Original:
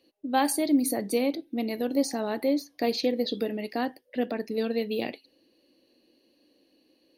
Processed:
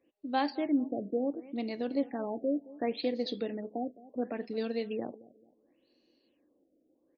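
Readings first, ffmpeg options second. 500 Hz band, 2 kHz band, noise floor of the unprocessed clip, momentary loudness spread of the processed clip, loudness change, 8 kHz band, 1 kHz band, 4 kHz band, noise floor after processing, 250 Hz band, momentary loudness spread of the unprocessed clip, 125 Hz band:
−5.5 dB, −7.5 dB, −68 dBFS, 7 LU, −6.0 dB, below −35 dB, −5.5 dB, −8.5 dB, −74 dBFS, −5.5 dB, 8 LU, can't be measured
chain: -filter_complex "[0:a]asplit=2[link_01][link_02];[link_02]adelay=219,lowpass=frequency=4500:poles=1,volume=-19.5dB,asplit=2[link_03][link_04];[link_04]adelay=219,lowpass=frequency=4500:poles=1,volume=0.32,asplit=2[link_05][link_06];[link_06]adelay=219,lowpass=frequency=4500:poles=1,volume=0.32[link_07];[link_01][link_03][link_05][link_07]amix=inputs=4:normalize=0,afftfilt=real='re*lt(b*sr/1024,720*pow(7000/720,0.5+0.5*sin(2*PI*0.7*pts/sr)))':imag='im*lt(b*sr/1024,720*pow(7000/720,0.5+0.5*sin(2*PI*0.7*pts/sr)))':win_size=1024:overlap=0.75,volume=-5.5dB"

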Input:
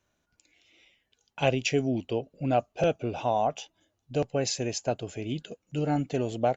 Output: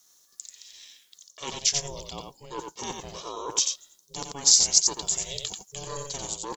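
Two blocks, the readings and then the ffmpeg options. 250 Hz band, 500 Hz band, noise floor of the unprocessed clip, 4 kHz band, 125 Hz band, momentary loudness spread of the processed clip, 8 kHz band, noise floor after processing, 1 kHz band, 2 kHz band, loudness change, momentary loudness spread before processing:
−13.5 dB, −12.0 dB, −78 dBFS, +11.5 dB, −12.5 dB, 22 LU, can't be measured, −62 dBFS, −7.0 dB, −6.5 dB, +5.5 dB, 9 LU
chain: -af "lowshelf=frequency=600:width_type=q:width=1.5:gain=-8.5,areverse,acompressor=threshold=-37dB:ratio=5,areverse,aecho=1:1:89:0.562,aeval=exprs='val(0)*sin(2*PI*280*n/s)':channel_layout=same,aexciter=amount=10.1:drive=5.6:freq=3800,volume=5dB"

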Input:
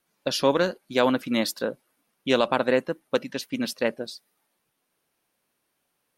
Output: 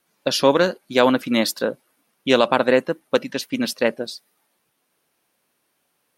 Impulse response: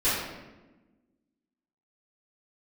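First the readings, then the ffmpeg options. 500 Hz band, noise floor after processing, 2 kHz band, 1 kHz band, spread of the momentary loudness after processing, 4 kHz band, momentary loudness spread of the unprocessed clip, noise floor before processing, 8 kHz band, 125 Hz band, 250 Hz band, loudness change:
+5.5 dB, −71 dBFS, +5.5 dB, +5.5 dB, 11 LU, +5.5 dB, 10 LU, −76 dBFS, +5.5 dB, +4.0 dB, +5.0 dB, +5.0 dB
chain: -af "lowshelf=frequency=61:gain=-10.5,volume=5.5dB"

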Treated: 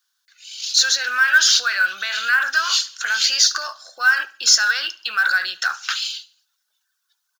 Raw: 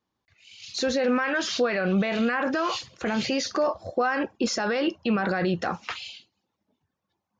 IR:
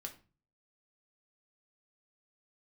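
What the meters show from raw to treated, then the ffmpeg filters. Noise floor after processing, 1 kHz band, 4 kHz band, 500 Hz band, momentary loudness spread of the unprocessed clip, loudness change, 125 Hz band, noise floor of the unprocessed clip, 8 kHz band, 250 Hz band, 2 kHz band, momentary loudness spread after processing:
−74 dBFS, +2.5 dB, +15.5 dB, −18.5 dB, 8 LU, +9.0 dB, below −25 dB, −82 dBFS, can't be measured, below −30 dB, +13.5 dB, 11 LU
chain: -filter_complex "[0:a]aexciter=amount=9.9:drive=2.8:freq=3200,highpass=frequency=1500:width_type=q:width=8.9,acrusher=bits=7:mode=log:mix=0:aa=0.000001,asplit=2[link_01][link_02];[link_02]aecho=0:1:72|144|216:0.0891|0.0348|0.0136[link_03];[link_01][link_03]amix=inputs=2:normalize=0,volume=-2dB"

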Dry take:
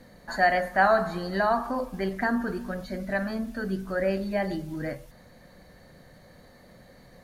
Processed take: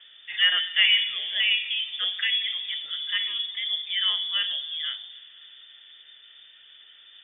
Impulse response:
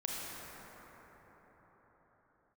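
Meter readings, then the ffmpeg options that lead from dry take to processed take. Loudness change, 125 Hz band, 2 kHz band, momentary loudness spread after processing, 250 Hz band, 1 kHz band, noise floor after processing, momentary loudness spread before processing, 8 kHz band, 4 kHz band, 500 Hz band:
+4.0 dB, below −35 dB, +2.5 dB, 11 LU, below −35 dB, −20.5 dB, −52 dBFS, 12 LU, can't be measured, +24.5 dB, below −25 dB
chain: -filter_complex "[0:a]asplit=2[link_01][link_02];[link_02]aemphasis=mode=reproduction:type=bsi[link_03];[1:a]atrim=start_sample=2205,asetrate=70560,aresample=44100[link_04];[link_03][link_04]afir=irnorm=-1:irlink=0,volume=-17dB[link_05];[link_01][link_05]amix=inputs=2:normalize=0,lowpass=frequency=3100:width_type=q:width=0.5098,lowpass=frequency=3100:width_type=q:width=0.6013,lowpass=frequency=3100:width_type=q:width=0.9,lowpass=frequency=3100:width_type=q:width=2.563,afreqshift=-3600"

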